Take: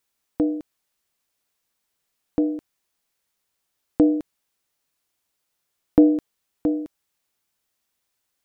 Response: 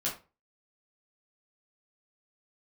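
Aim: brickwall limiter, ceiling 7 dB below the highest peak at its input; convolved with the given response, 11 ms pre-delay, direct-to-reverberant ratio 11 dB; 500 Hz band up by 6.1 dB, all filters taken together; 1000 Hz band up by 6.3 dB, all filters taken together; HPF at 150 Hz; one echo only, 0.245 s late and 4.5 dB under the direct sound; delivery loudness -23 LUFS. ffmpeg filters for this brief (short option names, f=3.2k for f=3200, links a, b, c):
-filter_complex "[0:a]highpass=150,equalizer=f=500:t=o:g=5.5,equalizer=f=1k:t=o:g=6.5,alimiter=limit=-7.5dB:level=0:latency=1,aecho=1:1:245:0.596,asplit=2[a][b];[1:a]atrim=start_sample=2205,adelay=11[c];[b][c]afir=irnorm=-1:irlink=0,volume=-15.5dB[d];[a][d]amix=inputs=2:normalize=0,volume=-2dB"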